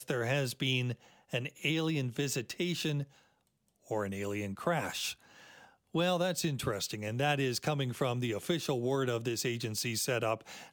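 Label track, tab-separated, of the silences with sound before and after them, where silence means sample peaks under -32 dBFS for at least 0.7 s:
3.020000	3.910000	silence
5.110000	5.950000	silence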